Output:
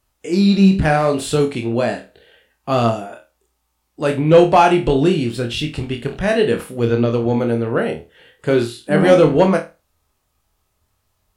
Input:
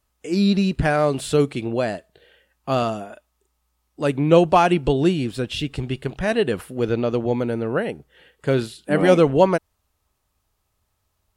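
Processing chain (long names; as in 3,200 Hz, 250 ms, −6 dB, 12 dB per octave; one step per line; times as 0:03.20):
flanger 0.72 Hz, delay 7.6 ms, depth 8.5 ms, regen +72%
soft clipping −10 dBFS, distortion −21 dB
flutter between parallel walls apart 4.4 metres, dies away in 0.26 s
level +7.5 dB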